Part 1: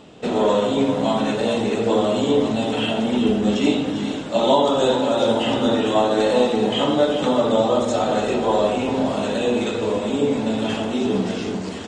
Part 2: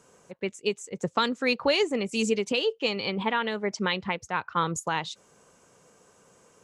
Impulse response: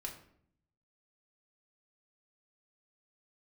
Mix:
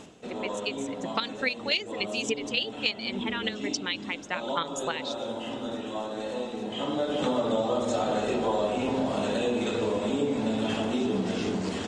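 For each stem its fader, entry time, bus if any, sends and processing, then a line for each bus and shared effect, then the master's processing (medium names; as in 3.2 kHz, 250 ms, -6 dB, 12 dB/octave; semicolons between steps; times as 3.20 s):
-0.5 dB, 0.00 s, send -19.5 dB, auto duck -18 dB, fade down 0.25 s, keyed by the second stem
0.0 dB, 0.00 s, no send, reverb removal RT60 0.61 s; frequency weighting D; square tremolo 3.5 Hz, depth 65%, duty 20%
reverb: on, RT60 0.65 s, pre-delay 3 ms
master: compression 3:1, threshold -26 dBFS, peak gain reduction 10.5 dB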